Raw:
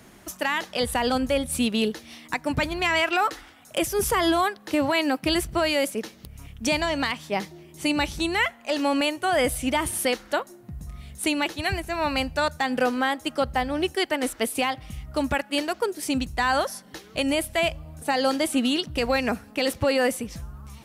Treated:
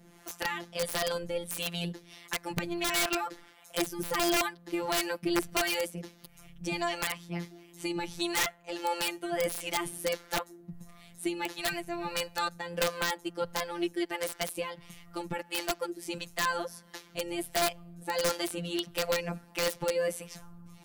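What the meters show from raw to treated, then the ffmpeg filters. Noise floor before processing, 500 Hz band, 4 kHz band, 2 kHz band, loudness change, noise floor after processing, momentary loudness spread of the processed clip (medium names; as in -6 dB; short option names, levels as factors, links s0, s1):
-50 dBFS, -7.5 dB, -6.0 dB, -8.0 dB, -7.5 dB, -57 dBFS, 12 LU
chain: -filter_complex "[0:a]afftfilt=real='hypot(re,im)*cos(PI*b)':imag='0':win_size=1024:overlap=0.75,acrossover=split=460[s0][s1];[s0]aeval=exprs='val(0)*(1-0.7/2+0.7/2*cos(2*PI*1.5*n/s))':c=same[s2];[s1]aeval=exprs='val(0)*(1-0.7/2-0.7/2*cos(2*PI*1.5*n/s))':c=same[s3];[s2][s3]amix=inputs=2:normalize=0,aeval=exprs='(mod(10*val(0)+1,2)-1)/10':c=same"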